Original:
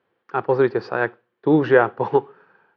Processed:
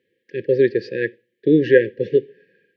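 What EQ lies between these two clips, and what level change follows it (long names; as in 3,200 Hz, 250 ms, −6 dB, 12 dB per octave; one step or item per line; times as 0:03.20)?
linear-phase brick-wall band-stop 560–1,600 Hz
low-shelf EQ 170 Hz −5.5 dB
+3.0 dB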